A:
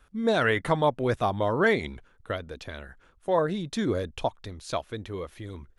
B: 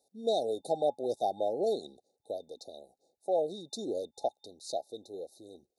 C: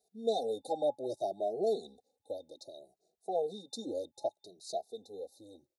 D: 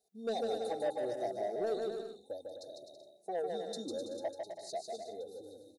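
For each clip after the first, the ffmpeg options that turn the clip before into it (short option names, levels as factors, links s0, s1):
-af "highpass=460,afftfilt=real='re*(1-between(b*sr/4096,840,3600))':imag='im*(1-between(b*sr/4096,840,3600))':win_size=4096:overlap=0.75,volume=0.794"
-filter_complex "[0:a]asplit=2[s0][s1];[s1]adelay=2.5,afreqshift=0.64[s2];[s0][s2]amix=inputs=2:normalize=1"
-filter_complex "[0:a]asoftclip=type=tanh:threshold=0.0473,asplit=2[s0][s1];[s1]aecho=0:1:150|255|328.5|380|416:0.631|0.398|0.251|0.158|0.1[s2];[s0][s2]amix=inputs=2:normalize=0,volume=0.794"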